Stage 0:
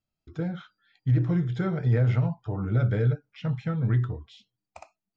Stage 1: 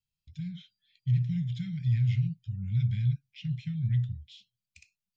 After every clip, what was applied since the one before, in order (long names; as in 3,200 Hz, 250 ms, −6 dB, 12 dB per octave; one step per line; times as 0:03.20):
inverse Chebyshev band-stop filter 350–1,200 Hz, stop band 50 dB
parametric band 3,200 Hz +3.5 dB 2 octaves
level −3 dB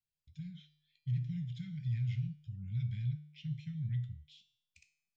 tuned comb filter 150 Hz, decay 0.65 s, harmonics all, mix 70%
level +1 dB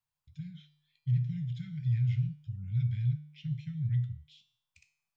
octave-band graphic EQ 125/250/1,000 Hz +7/−5/+12 dB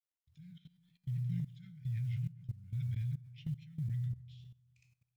log-companded quantiser 8 bits
delay with a low-pass on its return 130 ms, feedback 57%, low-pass 1,600 Hz, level −12.5 dB
output level in coarse steps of 17 dB
level −1 dB